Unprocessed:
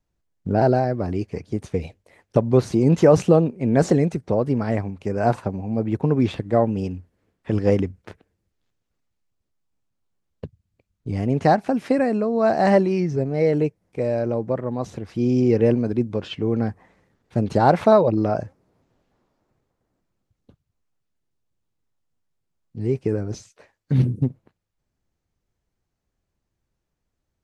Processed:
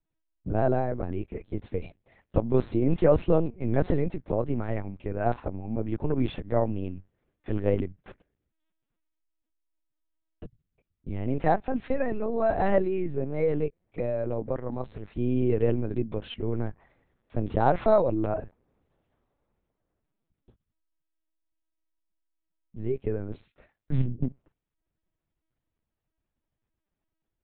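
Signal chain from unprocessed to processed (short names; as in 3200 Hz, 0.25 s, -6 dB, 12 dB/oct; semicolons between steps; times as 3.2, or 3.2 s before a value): LPC vocoder at 8 kHz pitch kept; gain -6 dB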